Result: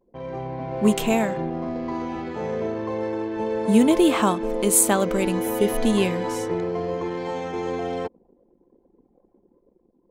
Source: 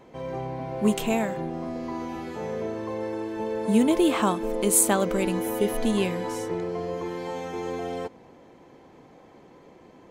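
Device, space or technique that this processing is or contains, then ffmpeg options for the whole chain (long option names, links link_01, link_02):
voice memo with heavy noise removal: -af "anlmdn=0.251,dynaudnorm=framelen=110:gausssize=11:maxgain=4dB"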